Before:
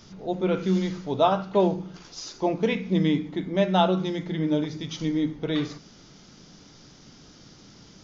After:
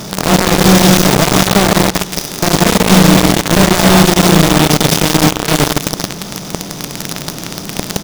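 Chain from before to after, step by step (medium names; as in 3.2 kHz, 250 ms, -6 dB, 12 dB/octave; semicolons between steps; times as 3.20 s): spectral levelling over time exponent 0.4; saturation -17.5 dBFS, distortion -11 dB; tone controls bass +13 dB, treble +12 dB; band-passed feedback delay 286 ms, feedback 81%, band-pass 310 Hz, level -23 dB; dynamic bell 5.7 kHz, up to +4 dB, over -42 dBFS, Q 2.3; feedback delay 166 ms, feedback 50%, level -6 dB; companded quantiser 2-bit; trim -1 dB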